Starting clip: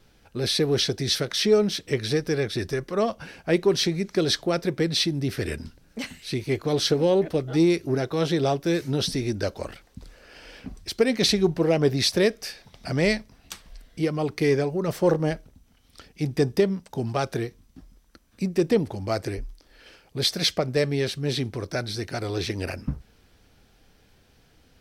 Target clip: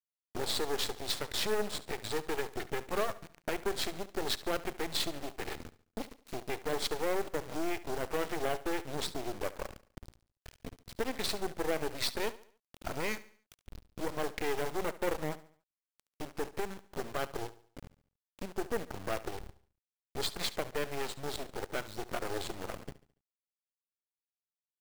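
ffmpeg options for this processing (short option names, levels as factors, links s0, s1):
-filter_complex "[0:a]asettb=1/sr,asplit=3[s0][s1][s2];[s0]atrim=end=2.714[s3];[s1]atrim=start=2.71:end=3.92,asetpts=PTS-STARTPTS,afade=t=in:d=0.004:c=qsin,afade=t=out:st=1.206:d=0.004:c=qsin,highpass=82[s4];[s2]atrim=start=3.916[s5];[s3][s4]acrossfade=d=0.004:c1=hsin:c2=qsin[s6];[s6][s5]acrossfade=d=0.004:c1=qsin:c2=hsin,afwtdn=0.02,lowpass=f=5700:w=0.5412,lowpass=f=5700:w=1.3066,highshelf=f=4300:g=-4.5,asplit=2[s7][s8];[s8]acompressor=threshold=0.0224:ratio=5,volume=1[s9];[s7][s9]amix=inputs=2:normalize=0,alimiter=limit=0.126:level=0:latency=1:release=369,acrossover=split=340|3000[s10][s11][s12];[s10]acompressor=threshold=0.01:ratio=8[s13];[s13][s11][s12]amix=inputs=3:normalize=0,acrusher=bits=6:mix=0:aa=0.000001,aeval=exprs='0.15*(cos(1*acos(clip(val(0)/0.15,-1,1)))-cos(1*PI/2))+0.0335*(cos(3*acos(clip(val(0)/0.15,-1,1)))-cos(3*PI/2))+0.015*(cos(8*acos(clip(val(0)/0.15,-1,1)))-cos(8*PI/2))':c=same,aecho=1:1:71|142|213|284:0.141|0.0593|0.0249|0.0105"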